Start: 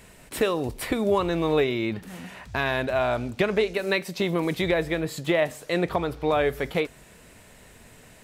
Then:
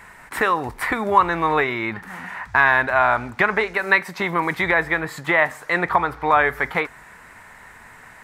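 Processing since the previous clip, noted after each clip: high-order bell 1.3 kHz +15 dB; trim -1.5 dB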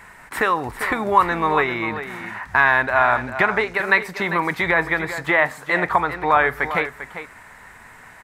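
delay 397 ms -11 dB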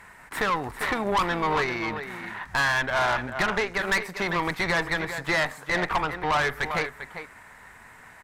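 valve stage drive 19 dB, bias 0.75

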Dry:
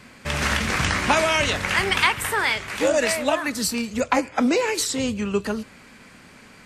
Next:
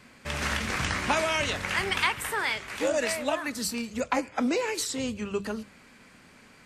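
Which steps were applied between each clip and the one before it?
hum notches 50/100/150/200 Hz; trim -6.5 dB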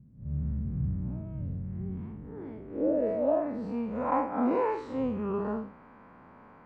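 spectral blur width 126 ms; low-pass sweep 150 Hz -> 1 kHz, 1.73–3.98 s; trim +2.5 dB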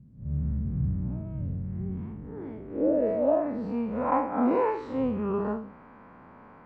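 distance through air 67 m; endings held to a fixed fall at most 100 dB/s; trim +3 dB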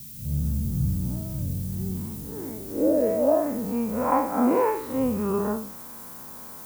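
added noise violet -45 dBFS; trim +3 dB

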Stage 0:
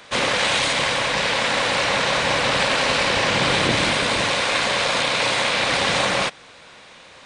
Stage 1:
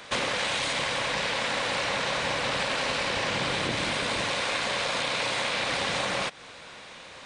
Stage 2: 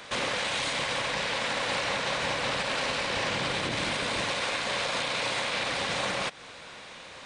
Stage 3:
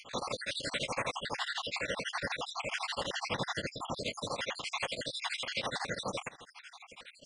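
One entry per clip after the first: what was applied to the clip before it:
compression 5:1, threshold -26 dBFS, peak gain reduction 10 dB
peak limiter -20 dBFS, peak gain reduction 5 dB
random holes in the spectrogram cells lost 63%; tremolo of two beating tones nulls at 12 Hz

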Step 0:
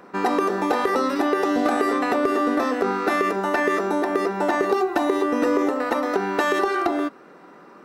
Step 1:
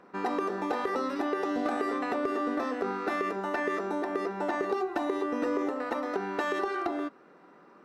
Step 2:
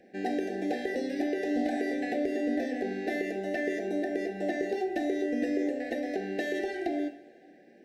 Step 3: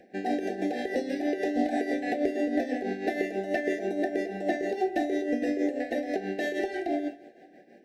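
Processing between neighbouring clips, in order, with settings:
treble shelf 8.8 kHz -11.5 dB; trim -9 dB
Chebyshev band-stop 780–1600 Hz, order 5; on a send at -5.5 dB: reverberation, pre-delay 3 ms
peaking EQ 700 Hz +3.5 dB 0.44 oct; tremolo 6.2 Hz, depth 60%; trim +4 dB

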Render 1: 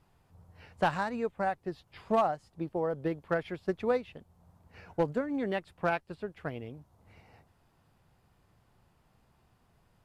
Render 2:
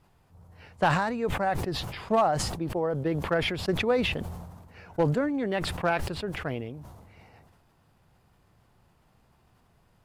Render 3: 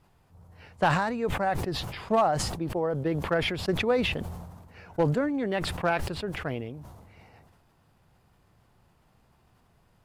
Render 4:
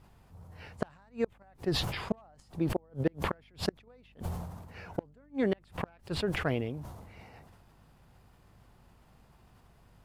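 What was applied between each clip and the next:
decay stretcher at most 39 dB/s; trim +3 dB
no audible change
inverted gate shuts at -19 dBFS, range -36 dB; hum 50 Hz, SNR 27 dB; trim +2 dB

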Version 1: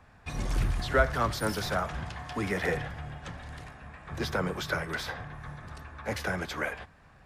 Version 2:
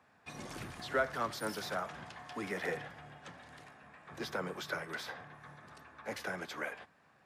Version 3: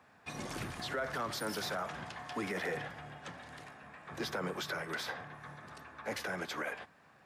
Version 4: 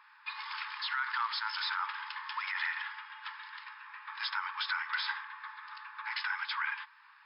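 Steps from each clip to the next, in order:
high-pass 200 Hz 12 dB/octave; trim -7 dB
peak limiter -31.5 dBFS, peak gain reduction 11.5 dB; trim +4 dB
brick-wall FIR band-pass 830–5300 Hz; trim +6 dB

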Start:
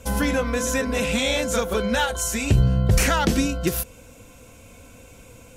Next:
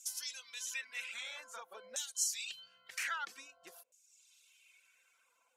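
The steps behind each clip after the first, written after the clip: reverb removal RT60 0.9 s; LFO band-pass saw down 0.51 Hz 570–6700 Hz; differentiator; trim +2 dB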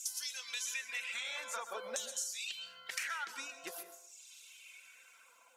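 high-pass 150 Hz; compression 12:1, threshold -47 dBFS, peak gain reduction 18 dB; plate-style reverb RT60 0.61 s, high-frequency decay 0.55×, pre-delay 110 ms, DRR 9.5 dB; trim +10.5 dB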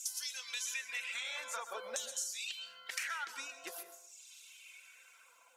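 peaking EQ 120 Hz -10 dB 1.9 oct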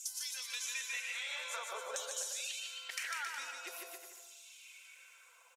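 high-pass 340 Hz 24 dB/octave; on a send: bouncing-ball echo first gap 150 ms, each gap 0.8×, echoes 5; on the sum: trim -2 dB

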